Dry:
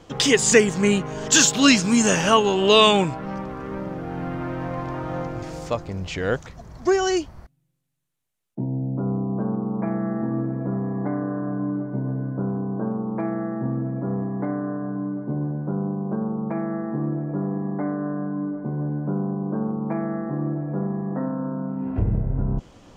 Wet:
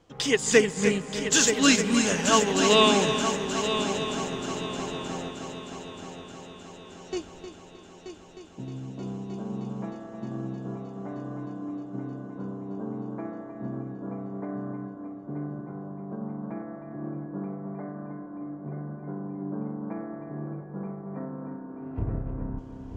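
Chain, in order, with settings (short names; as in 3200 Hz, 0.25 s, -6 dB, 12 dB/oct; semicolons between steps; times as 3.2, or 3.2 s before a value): 5.31–7.13 passive tone stack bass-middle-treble 6-0-2; multi-head echo 0.31 s, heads first and third, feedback 71%, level -7.5 dB; reverb RT60 6.3 s, pre-delay 0.124 s, DRR 13 dB; upward expander 1.5:1, over -29 dBFS; gain -3.5 dB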